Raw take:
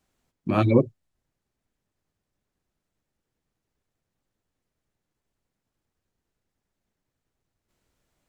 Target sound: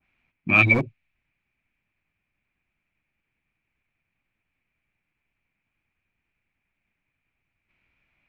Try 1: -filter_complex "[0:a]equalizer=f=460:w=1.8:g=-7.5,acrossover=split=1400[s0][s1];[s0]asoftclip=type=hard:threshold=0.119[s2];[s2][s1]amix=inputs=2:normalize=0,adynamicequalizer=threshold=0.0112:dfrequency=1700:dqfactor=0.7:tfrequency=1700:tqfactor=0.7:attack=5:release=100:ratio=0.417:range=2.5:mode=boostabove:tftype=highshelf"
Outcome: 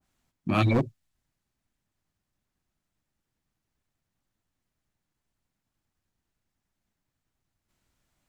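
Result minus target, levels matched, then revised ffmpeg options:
2 kHz band -9.0 dB
-filter_complex "[0:a]lowpass=f=2400:t=q:w=10,equalizer=f=460:w=1.8:g=-7.5,acrossover=split=1400[s0][s1];[s0]asoftclip=type=hard:threshold=0.119[s2];[s2][s1]amix=inputs=2:normalize=0,adynamicequalizer=threshold=0.0112:dfrequency=1700:dqfactor=0.7:tfrequency=1700:tqfactor=0.7:attack=5:release=100:ratio=0.417:range=2.5:mode=boostabove:tftype=highshelf"

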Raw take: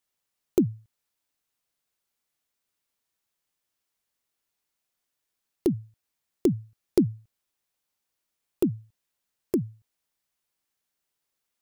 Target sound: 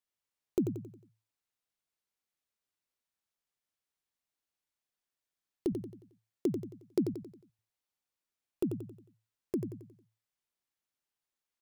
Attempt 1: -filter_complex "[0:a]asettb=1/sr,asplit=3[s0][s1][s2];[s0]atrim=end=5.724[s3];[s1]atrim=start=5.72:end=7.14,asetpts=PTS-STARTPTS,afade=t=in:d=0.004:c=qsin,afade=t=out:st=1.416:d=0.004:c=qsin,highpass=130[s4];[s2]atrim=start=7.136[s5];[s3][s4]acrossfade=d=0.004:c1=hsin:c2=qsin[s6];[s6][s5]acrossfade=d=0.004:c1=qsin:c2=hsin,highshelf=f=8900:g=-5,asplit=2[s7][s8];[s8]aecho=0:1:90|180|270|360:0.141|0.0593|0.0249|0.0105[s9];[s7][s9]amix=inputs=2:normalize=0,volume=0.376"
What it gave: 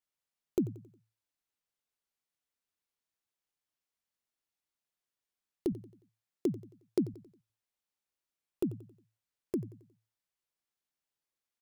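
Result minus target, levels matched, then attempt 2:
echo-to-direct -10 dB
-filter_complex "[0:a]asettb=1/sr,asplit=3[s0][s1][s2];[s0]atrim=end=5.724[s3];[s1]atrim=start=5.72:end=7.14,asetpts=PTS-STARTPTS,afade=t=in:d=0.004:c=qsin,afade=t=out:st=1.416:d=0.004:c=qsin,highpass=130[s4];[s2]atrim=start=7.136[s5];[s3][s4]acrossfade=d=0.004:c1=hsin:c2=qsin[s6];[s6][s5]acrossfade=d=0.004:c1=qsin:c2=hsin,highshelf=f=8900:g=-5,asplit=2[s7][s8];[s8]aecho=0:1:90|180|270|360|450:0.447|0.188|0.0788|0.0331|0.0139[s9];[s7][s9]amix=inputs=2:normalize=0,volume=0.376"

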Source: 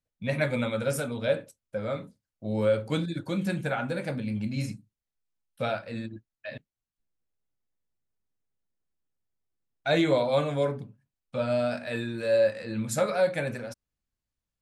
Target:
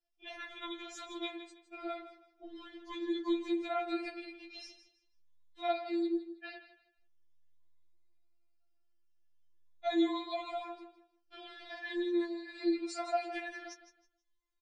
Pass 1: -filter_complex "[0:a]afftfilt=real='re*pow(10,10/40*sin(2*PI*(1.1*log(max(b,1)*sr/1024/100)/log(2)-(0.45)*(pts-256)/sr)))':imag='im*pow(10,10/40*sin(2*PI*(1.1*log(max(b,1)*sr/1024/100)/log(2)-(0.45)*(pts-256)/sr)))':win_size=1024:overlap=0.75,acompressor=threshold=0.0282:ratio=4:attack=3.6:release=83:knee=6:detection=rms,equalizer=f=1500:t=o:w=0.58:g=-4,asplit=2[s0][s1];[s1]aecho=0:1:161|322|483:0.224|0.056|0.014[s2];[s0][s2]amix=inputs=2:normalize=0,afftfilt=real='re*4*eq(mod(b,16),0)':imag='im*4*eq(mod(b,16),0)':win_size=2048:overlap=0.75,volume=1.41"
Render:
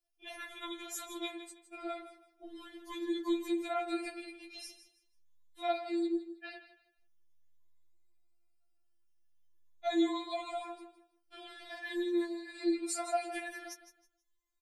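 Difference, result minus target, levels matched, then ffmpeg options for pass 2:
8 kHz band +10.5 dB
-filter_complex "[0:a]afftfilt=real='re*pow(10,10/40*sin(2*PI*(1.1*log(max(b,1)*sr/1024/100)/log(2)-(0.45)*(pts-256)/sr)))':imag='im*pow(10,10/40*sin(2*PI*(1.1*log(max(b,1)*sr/1024/100)/log(2)-(0.45)*(pts-256)/sr)))':win_size=1024:overlap=0.75,acompressor=threshold=0.0282:ratio=4:attack=3.6:release=83:knee=6:detection=rms,lowpass=f=5700:w=0.5412,lowpass=f=5700:w=1.3066,equalizer=f=1500:t=o:w=0.58:g=-4,asplit=2[s0][s1];[s1]aecho=0:1:161|322|483:0.224|0.056|0.014[s2];[s0][s2]amix=inputs=2:normalize=0,afftfilt=real='re*4*eq(mod(b,16),0)':imag='im*4*eq(mod(b,16),0)':win_size=2048:overlap=0.75,volume=1.41"

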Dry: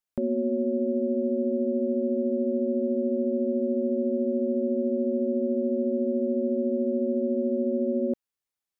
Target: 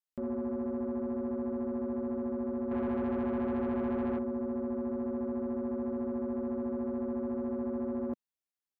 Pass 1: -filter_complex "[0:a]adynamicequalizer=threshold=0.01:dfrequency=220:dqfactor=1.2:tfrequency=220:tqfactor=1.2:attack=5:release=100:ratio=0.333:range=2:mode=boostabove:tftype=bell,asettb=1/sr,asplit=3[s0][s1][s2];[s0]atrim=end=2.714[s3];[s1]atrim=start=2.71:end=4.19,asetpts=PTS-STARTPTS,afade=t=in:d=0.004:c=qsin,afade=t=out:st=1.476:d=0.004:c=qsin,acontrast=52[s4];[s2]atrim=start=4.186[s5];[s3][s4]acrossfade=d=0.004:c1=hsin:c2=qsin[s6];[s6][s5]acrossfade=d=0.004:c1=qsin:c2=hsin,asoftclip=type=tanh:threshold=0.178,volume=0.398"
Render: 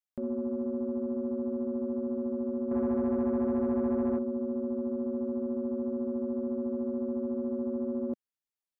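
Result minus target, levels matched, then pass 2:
saturation: distortion -6 dB
-filter_complex "[0:a]adynamicequalizer=threshold=0.01:dfrequency=220:dqfactor=1.2:tfrequency=220:tqfactor=1.2:attack=5:release=100:ratio=0.333:range=2:mode=boostabove:tftype=bell,asettb=1/sr,asplit=3[s0][s1][s2];[s0]atrim=end=2.714[s3];[s1]atrim=start=2.71:end=4.19,asetpts=PTS-STARTPTS,afade=t=in:d=0.004:c=qsin,afade=t=out:st=1.476:d=0.004:c=qsin,acontrast=52[s4];[s2]atrim=start=4.186[s5];[s3][s4]acrossfade=d=0.004:c1=hsin:c2=qsin[s6];[s6][s5]acrossfade=d=0.004:c1=qsin:c2=hsin,asoftclip=type=tanh:threshold=0.0891,volume=0.398"

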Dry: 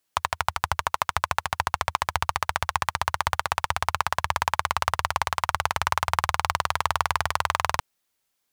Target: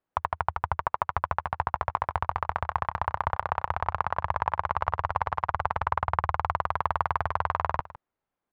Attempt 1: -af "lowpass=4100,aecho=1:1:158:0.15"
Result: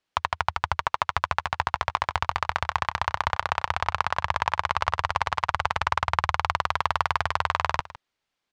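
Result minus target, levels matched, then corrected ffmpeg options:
4 kHz band +13.5 dB
-af "lowpass=1200,aecho=1:1:158:0.15"

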